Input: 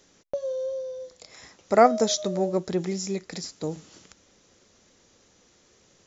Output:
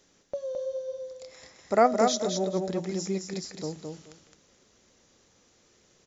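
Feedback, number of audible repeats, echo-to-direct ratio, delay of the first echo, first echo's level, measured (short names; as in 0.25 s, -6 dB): 19%, 3, -4.5 dB, 0.215 s, -4.5 dB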